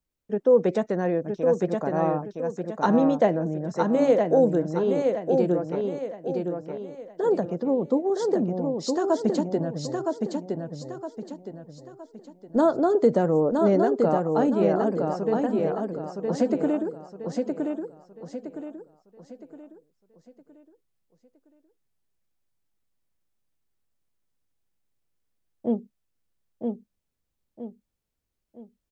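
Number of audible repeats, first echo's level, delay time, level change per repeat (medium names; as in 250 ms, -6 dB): 4, -4.0 dB, 965 ms, -8.5 dB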